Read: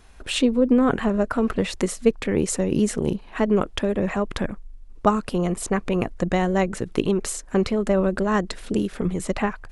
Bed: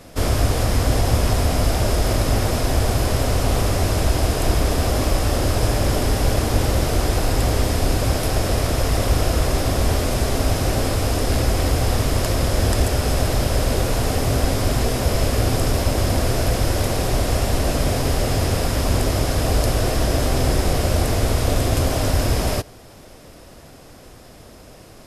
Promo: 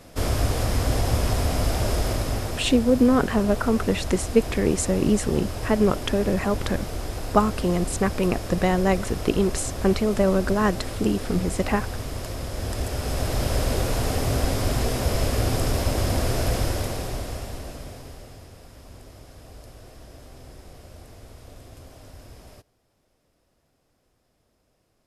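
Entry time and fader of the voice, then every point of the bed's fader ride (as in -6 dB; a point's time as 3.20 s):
2.30 s, 0.0 dB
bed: 1.98 s -4.5 dB
2.83 s -12 dB
12.51 s -12 dB
13.50 s -4 dB
16.59 s -4 dB
18.52 s -26 dB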